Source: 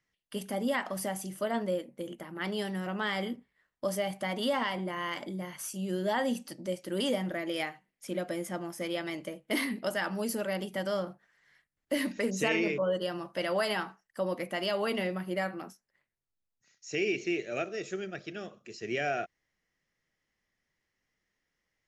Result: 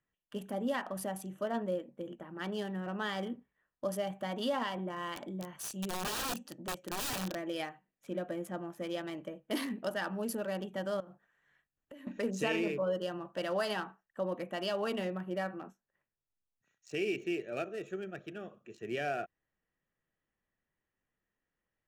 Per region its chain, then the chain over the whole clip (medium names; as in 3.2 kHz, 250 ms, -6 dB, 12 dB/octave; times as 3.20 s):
5.16–7.35 s: dynamic bell 6.1 kHz, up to +5 dB, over -54 dBFS, Q 1 + integer overflow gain 27.5 dB
11.00–12.07 s: treble shelf 5.4 kHz +9.5 dB + compression 12:1, threshold -43 dBFS
whole clip: local Wiener filter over 9 samples; band-stop 2.1 kHz, Q 5.9; trim -3 dB